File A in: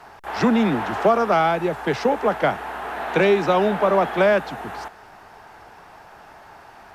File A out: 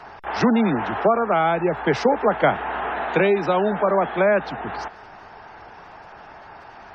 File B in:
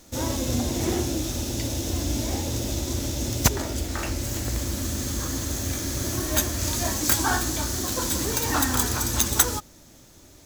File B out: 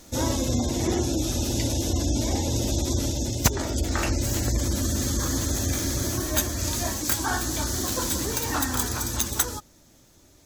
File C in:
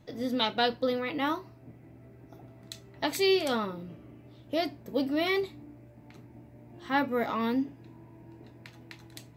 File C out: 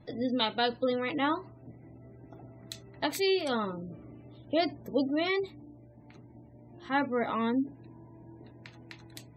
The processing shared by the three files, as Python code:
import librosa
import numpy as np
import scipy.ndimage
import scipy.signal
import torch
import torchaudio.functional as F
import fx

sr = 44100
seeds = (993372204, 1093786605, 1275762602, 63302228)

y = fx.spec_gate(x, sr, threshold_db=-30, keep='strong')
y = fx.rider(y, sr, range_db=5, speed_s=0.5)